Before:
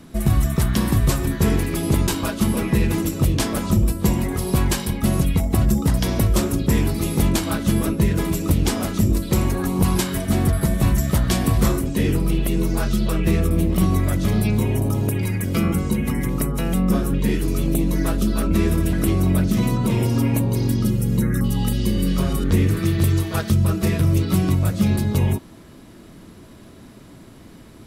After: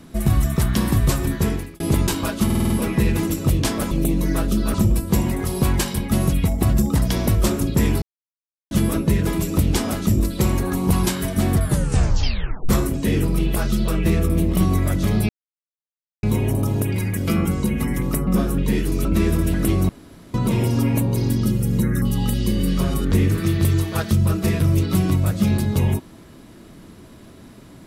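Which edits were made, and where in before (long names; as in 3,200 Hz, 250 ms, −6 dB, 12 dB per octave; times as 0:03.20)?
0:01.34–0:01.80: fade out
0:02.45: stutter 0.05 s, 6 plays
0:06.94–0:07.63: silence
0:10.55: tape stop 1.06 s
0:12.48–0:12.77: remove
0:14.50: splice in silence 0.94 s
0:16.54–0:16.83: remove
0:17.61–0:18.44: move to 0:03.66
0:19.28–0:19.73: fill with room tone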